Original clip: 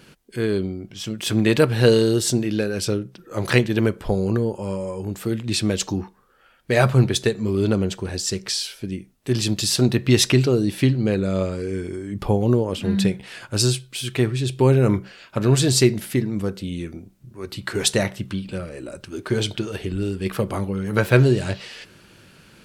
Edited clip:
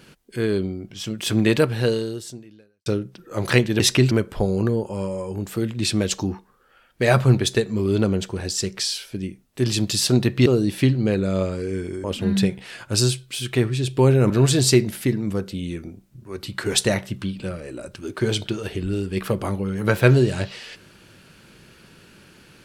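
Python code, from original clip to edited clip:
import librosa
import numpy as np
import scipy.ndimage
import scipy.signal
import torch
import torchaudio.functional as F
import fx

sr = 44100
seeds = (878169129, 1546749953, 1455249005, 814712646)

y = fx.edit(x, sr, fx.fade_out_span(start_s=1.48, length_s=1.38, curve='qua'),
    fx.move(start_s=10.15, length_s=0.31, to_s=3.8),
    fx.cut(start_s=12.04, length_s=0.62),
    fx.cut(start_s=14.92, length_s=0.47), tone=tone)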